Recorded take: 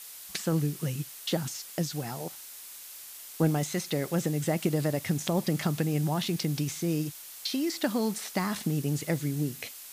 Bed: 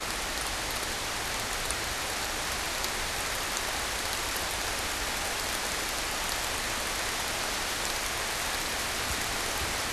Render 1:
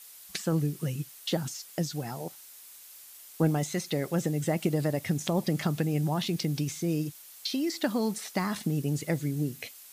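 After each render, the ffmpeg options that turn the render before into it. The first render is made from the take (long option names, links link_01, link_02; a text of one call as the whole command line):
ffmpeg -i in.wav -af "afftdn=noise_reduction=6:noise_floor=-45" out.wav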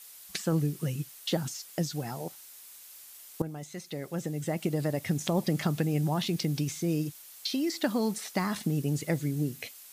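ffmpeg -i in.wav -filter_complex "[0:a]asplit=2[link_01][link_02];[link_01]atrim=end=3.42,asetpts=PTS-STARTPTS,afade=type=out:start_time=3.416:duration=0.004:curve=hsin:silence=0.177828[link_03];[link_02]atrim=start=3.42,asetpts=PTS-STARTPTS,afade=type=in:duration=1.82:silence=0.177828[link_04];[link_03][link_04]concat=n=2:v=0:a=1" out.wav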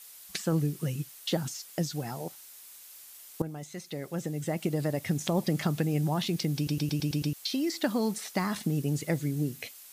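ffmpeg -i in.wav -filter_complex "[0:a]asplit=8[link_01][link_02][link_03][link_04][link_05][link_06][link_07][link_08];[link_01]atrim=end=6.672[link_09];[link_02]atrim=start=6.558:end=6.672[link_10];[link_03]atrim=start=6.558:end=6.672[link_11];[link_04]atrim=start=6.558:end=6.672[link_12];[link_05]atrim=start=6.558:end=6.672[link_13];[link_06]atrim=start=6.558:end=6.672[link_14];[link_07]atrim=start=6.558:end=6.672[link_15];[link_08]atrim=start=7.328[link_16];[link_09][link_10]acrossfade=duration=0.004:curve1=hsin:curve2=hsin[link_17];[link_17][link_11]acrossfade=duration=0.004:curve1=hsin:curve2=hsin[link_18];[link_18][link_12]acrossfade=duration=0.004:curve1=hsin:curve2=hsin[link_19];[link_19][link_13]acrossfade=duration=0.004:curve1=hsin:curve2=hsin[link_20];[link_20][link_14]acrossfade=duration=0.004:curve1=hsin:curve2=hsin[link_21];[link_21][link_15]acrossfade=duration=0.004:curve1=hsin:curve2=hsin[link_22];[link_22][link_16]acrossfade=duration=0.004:curve1=hsin:curve2=hsin" out.wav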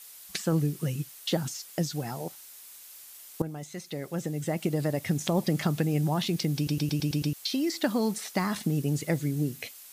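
ffmpeg -i in.wav -af "volume=1.5dB" out.wav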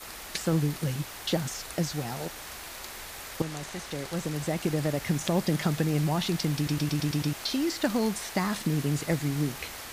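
ffmpeg -i in.wav -i bed.wav -filter_complex "[1:a]volume=-10.5dB[link_01];[0:a][link_01]amix=inputs=2:normalize=0" out.wav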